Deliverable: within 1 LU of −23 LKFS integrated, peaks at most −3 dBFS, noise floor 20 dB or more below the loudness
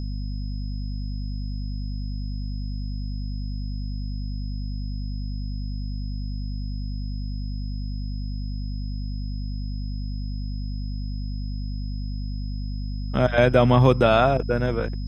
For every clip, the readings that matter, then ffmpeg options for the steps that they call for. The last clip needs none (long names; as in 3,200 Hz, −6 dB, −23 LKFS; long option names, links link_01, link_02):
mains hum 50 Hz; hum harmonics up to 250 Hz; level of the hum −26 dBFS; interfering tone 5,100 Hz; level of the tone −47 dBFS; integrated loudness −27.0 LKFS; sample peak −3.5 dBFS; target loudness −23.0 LKFS
→ -af "bandreject=frequency=50:width_type=h:width=4,bandreject=frequency=100:width_type=h:width=4,bandreject=frequency=150:width_type=h:width=4,bandreject=frequency=200:width_type=h:width=4,bandreject=frequency=250:width_type=h:width=4"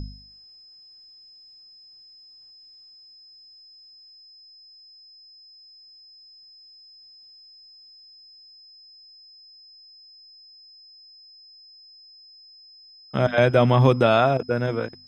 mains hum none found; interfering tone 5,100 Hz; level of the tone −47 dBFS
→ -af "bandreject=frequency=5100:width=30"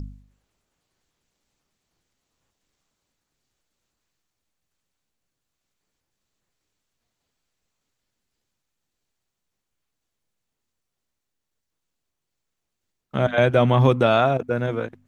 interfering tone none found; integrated loudness −19.5 LKFS; sample peak −3.5 dBFS; target loudness −23.0 LKFS
→ -af "volume=-3.5dB"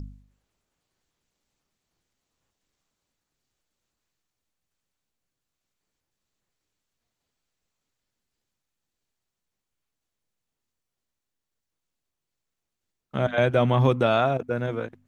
integrated loudness −23.0 LKFS; sample peak −7.0 dBFS; background noise floor −85 dBFS